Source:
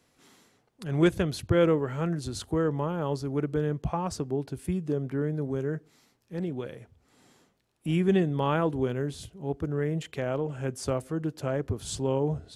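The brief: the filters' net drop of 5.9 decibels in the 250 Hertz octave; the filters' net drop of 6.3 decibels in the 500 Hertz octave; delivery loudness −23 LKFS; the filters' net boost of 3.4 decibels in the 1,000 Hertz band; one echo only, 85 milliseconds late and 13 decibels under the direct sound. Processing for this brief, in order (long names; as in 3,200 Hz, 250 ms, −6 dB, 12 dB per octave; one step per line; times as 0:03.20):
parametric band 250 Hz −8 dB
parametric band 500 Hz −6.5 dB
parametric band 1,000 Hz +6.5 dB
single-tap delay 85 ms −13 dB
level +9.5 dB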